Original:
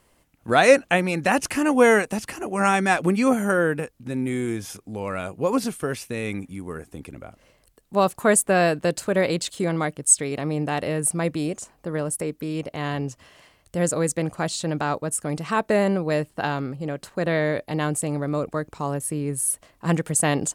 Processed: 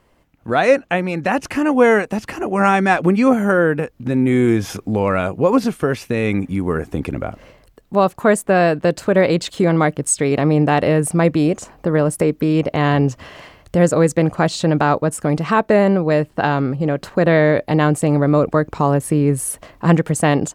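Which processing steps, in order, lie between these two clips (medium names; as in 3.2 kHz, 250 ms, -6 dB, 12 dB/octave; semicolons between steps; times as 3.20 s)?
peaking EQ 9.5 kHz -6.5 dB 0.7 oct; in parallel at 0 dB: compression, threshold -33 dBFS, peak gain reduction 22 dB; on the sum: treble shelf 3.1 kHz -8.5 dB; level rider gain up to 11.5 dB; trim -1 dB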